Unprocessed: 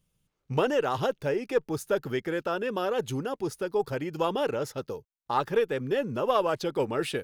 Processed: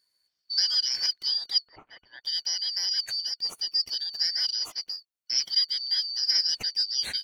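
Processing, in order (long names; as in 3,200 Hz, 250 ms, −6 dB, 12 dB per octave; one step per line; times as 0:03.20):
band-splitting scrambler in four parts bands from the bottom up 4321
0:01.68–0:02.24: low-pass filter 2,100 Hz 24 dB per octave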